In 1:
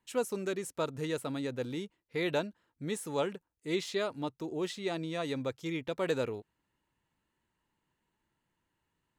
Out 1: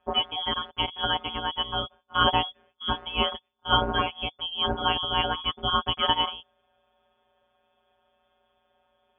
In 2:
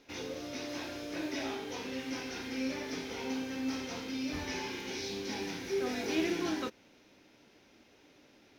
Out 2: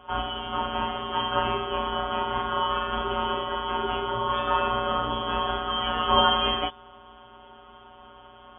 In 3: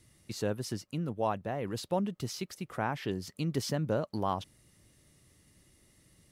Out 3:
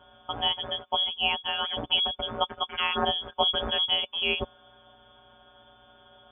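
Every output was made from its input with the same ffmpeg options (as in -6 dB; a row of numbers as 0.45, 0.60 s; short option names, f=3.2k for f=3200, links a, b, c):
-af "afftfilt=real='hypot(re,im)*cos(PI*b)':imag='0':win_size=1024:overlap=0.75,aexciter=amount=12.7:drive=7.4:freq=2.4k,lowpass=f=3k:t=q:w=0.5098,lowpass=f=3k:t=q:w=0.6013,lowpass=f=3k:t=q:w=0.9,lowpass=f=3k:t=q:w=2.563,afreqshift=-3500,volume=7dB"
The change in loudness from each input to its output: +9.0, +10.5, +8.5 LU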